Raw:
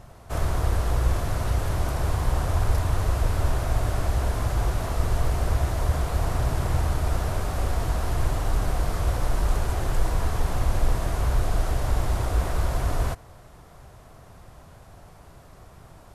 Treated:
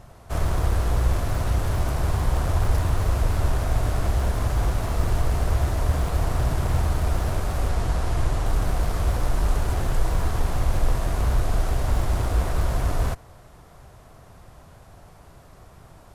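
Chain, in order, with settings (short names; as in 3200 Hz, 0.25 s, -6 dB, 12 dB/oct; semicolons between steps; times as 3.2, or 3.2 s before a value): in parallel at -10.5 dB: Schmitt trigger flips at -25.5 dBFS; 7.69–8.46 on the sum: LPF 11000 Hz 12 dB/oct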